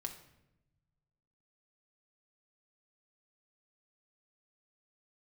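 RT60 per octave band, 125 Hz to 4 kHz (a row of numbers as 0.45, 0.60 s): 2.0, 1.5, 1.0, 0.80, 0.75, 0.60 s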